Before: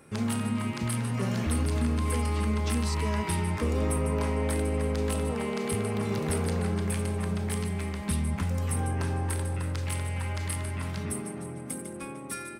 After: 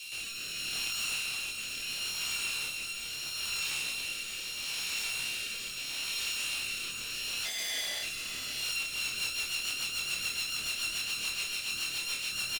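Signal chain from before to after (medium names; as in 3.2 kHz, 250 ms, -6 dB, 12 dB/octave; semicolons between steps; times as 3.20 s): sorted samples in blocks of 32 samples; steep high-pass 2.4 kHz 72 dB/octave; compressor with a negative ratio -44 dBFS, ratio -1; chorus voices 2, 0.85 Hz, delay 14 ms, depth 4.7 ms; 7.45–8.03 s: ring modulator 700 Hz; overdrive pedal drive 31 dB, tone 6.8 kHz, clips at -25.5 dBFS; rotary cabinet horn 0.75 Hz, later 7 Hz, at 8.47 s; doubling 27 ms -4 dB; on a send: delay 589 ms -11.5 dB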